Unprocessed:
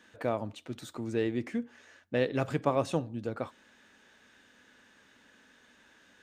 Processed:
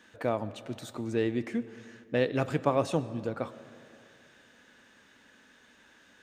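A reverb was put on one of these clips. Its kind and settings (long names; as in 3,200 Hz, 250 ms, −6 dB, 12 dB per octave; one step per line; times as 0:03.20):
comb and all-pass reverb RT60 2.7 s, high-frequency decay 0.6×, pre-delay 70 ms, DRR 16 dB
level +1.5 dB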